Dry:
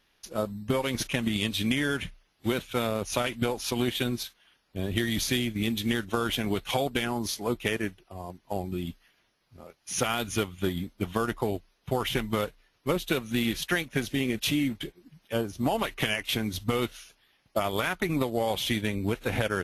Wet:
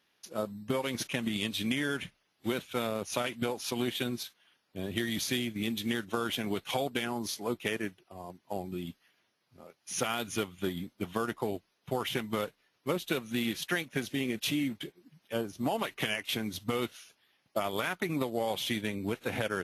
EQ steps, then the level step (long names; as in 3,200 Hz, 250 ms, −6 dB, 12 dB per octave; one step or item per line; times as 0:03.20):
high-pass filter 130 Hz 12 dB per octave
−4.0 dB